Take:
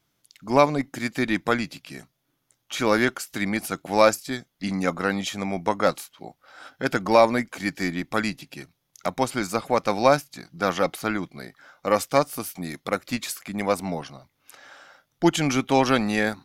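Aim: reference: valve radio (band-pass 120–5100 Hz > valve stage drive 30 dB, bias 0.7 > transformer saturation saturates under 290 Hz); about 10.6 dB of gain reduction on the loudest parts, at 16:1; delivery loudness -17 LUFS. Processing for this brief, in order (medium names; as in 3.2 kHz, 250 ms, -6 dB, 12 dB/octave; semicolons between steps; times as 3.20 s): compression 16:1, threshold -21 dBFS; band-pass 120–5100 Hz; valve stage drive 30 dB, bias 0.7; transformer saturation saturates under 290 Hz; trim +23.5 dB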